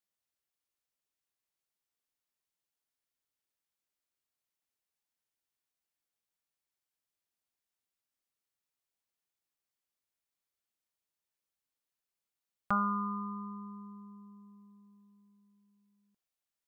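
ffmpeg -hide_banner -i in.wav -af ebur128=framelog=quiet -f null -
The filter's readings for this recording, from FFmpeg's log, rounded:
Integrated loudness:
  I:         -35.6 LUFS
  Threshold: -49.0 LUFS
Loudness range:
  LRA:        11.1 LU
  Threshold: -60.0 LUFS
  LRA low:   -49.9 LUFS
  LRA high:  -38.8 LUFS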